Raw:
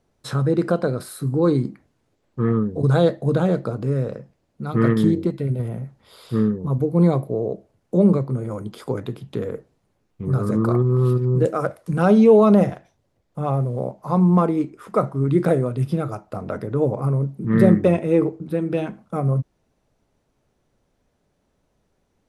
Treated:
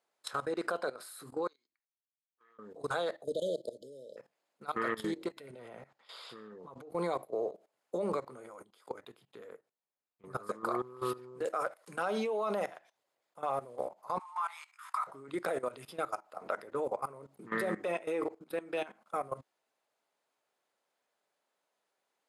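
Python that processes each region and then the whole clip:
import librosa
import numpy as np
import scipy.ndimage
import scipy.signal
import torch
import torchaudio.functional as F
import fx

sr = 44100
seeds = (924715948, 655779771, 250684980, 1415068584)

y = fx.chain(x, sr, fx.bandpass_q(hz=6400.0, q=4.9),
    fx.air_absorb(metres=260.0), at=(1.47, 2.59))
y = fx.chain(y, sr, fx.brickwall_bandstop(low_hz=660.0, high_hz=3000.0),
    fx.low_shelf(hz=83.0, db=-11.0), at=(3.24, 4.17))
y = fx.chain(y, sr, fx.lowpass(hz=6200.0, slope=12),
    fx.over_compress(threshold_db=-23.0, ratio=-0.5), at=(5.51, 6.9))
y = fx.chain(y, sr, fx.low_shelf(hz=180.0, db=8.5),
    fx.upward_expand(threshold_db=-32.0, expansion=1.5), at=(8.64, 10.48))
y = fx.chain(y, sr, fx.steep_highpass(hz=880.0, slope=48),
    fx.doubler(ms=20.0, db=-3), at=(14.19, 15.07))
y = scipy.signal.sosfilt(scipy.signal.butter(2, 750.0, 'highpass', fs=sr, output='sos'), y)
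y = fx.notch(y, sr, hz=5800.0, q=11.0)
y = fx.level_steps(y, sr, step_db=17)
y = F.gain(torch.from_numpy(y), 1.5).numpy()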